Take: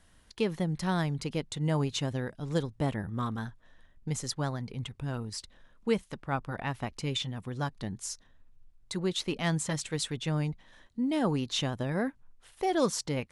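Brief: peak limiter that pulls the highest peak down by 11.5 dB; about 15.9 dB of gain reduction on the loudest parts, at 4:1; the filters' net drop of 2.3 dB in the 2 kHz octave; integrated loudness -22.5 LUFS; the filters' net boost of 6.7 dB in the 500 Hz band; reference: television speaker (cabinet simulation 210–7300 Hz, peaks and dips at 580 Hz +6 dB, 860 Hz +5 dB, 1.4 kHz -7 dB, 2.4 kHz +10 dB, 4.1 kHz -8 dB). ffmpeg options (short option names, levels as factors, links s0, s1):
-af "equalizer=f=500:t=o:g=5,equalizer=f=2000:t=o:g=-6,acompressor=threshold=0.0112:ratio=4,alimiter=level_in=4.47:limit=0.0631:level=0:latency=1,volume=0.224,highpass=f=210:w=0.5412,highpass=f=210:w=1.3066,equalizer=f=580:t=q:w=4:g=6,equalizer=f=860:t=q:w=4:g=5,equalizer=f=1400:t=q:w=4:g=-7,equalizer=f=2400:t=q:w=4:g=10,equalizer=f=4100:t=q:w=4:g=-8,lowpass=f=7300:w=0.5412,lowpass=f=7300:w=1.3066,volume=17.8"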